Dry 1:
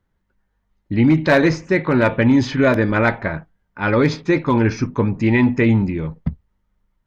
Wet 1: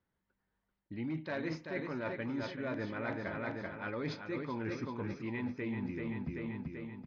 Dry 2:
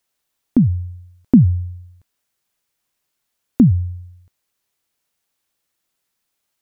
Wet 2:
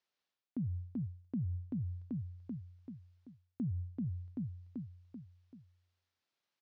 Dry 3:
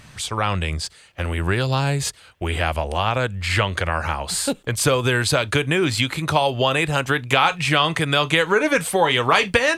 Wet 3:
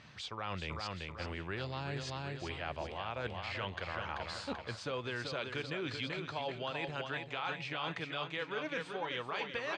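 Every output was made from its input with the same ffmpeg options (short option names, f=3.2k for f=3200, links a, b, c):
-af "highpass=f=150:p=1,aecho=1:1:386|772|1158|1544|1930:0.447|0.201|0.0905|0.0407|0.0183,areverse,acompressor=threshold=-27dB:ratio=6,areverse,lowpass=f=5.3k:w=0.5412,lowpass=f=5.3k:w=1.3066,volume=-9dB"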